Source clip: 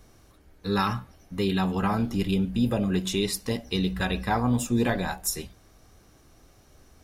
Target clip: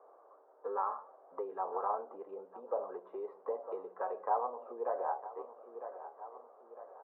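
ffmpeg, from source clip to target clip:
ffmpeg -i in.wav -af "aecho=1:1:954|1908|2862:0.106|0.0477|0.0214,acompressor=threshold=-31dB:ratio=6,asuperpass=centerf=730:order=8:qfactor=0.99,volume=5.5dB" out.wav

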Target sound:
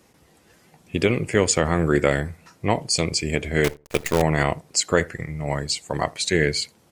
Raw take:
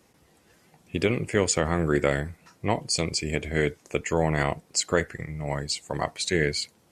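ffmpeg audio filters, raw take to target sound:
ffmpeg -i in.wav -filter_complex "[0:a]asettb=1/sr,asplit=3[link_01][link_02][link_03];[link_01]atrim=end=3.644[link_04];[link_02]atrim=start=3.64:end=4.22,asetpts=PTS-STARTPTS,afade=type=in:duration=0.004:curve=qsin,afade=type=out:start_time=0.576:duration=0.004:curve=qsin,acrusher=bits=5:dc=4:mix=0:aa=0.000001[link_05];[link_03]atrim=start=4.216[link_06];[link_04][link_05]acrossfade=duration=0.004:curve1=hsin:curve2=qsin[link_07];[link_07][link_06]acrossfade=duration=0.004:curve1=qsin:curve2=hsin,asplit=2[link_08][link_09];[link_09]adelay=82,lowpass=frequency=930:poles=1,volume=-22.5dB,asplit=2[link_10][link_11];[link_11]adelay=82,lowpass=frequency=930:poles=1,volume=0.17[link_12];[link_08][link_10][link_12]amix=inputs=3:normalize=0,volume=4dB" out.wav

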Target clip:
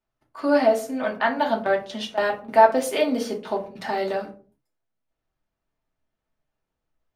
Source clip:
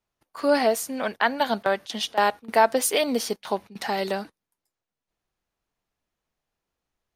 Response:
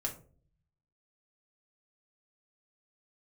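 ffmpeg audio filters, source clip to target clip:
-filter_complex "[0:a]highshelf=frequency=4900:gain=-11.5[link_01];[1:a]atrim=start_sample=2205,afade=type=out:start_time=0.4:duration=0.01,atrim=end_sample=18081[link_02];[link_01][link_02]afir=irnorm=-1:irlink=0,volume=-1dB"

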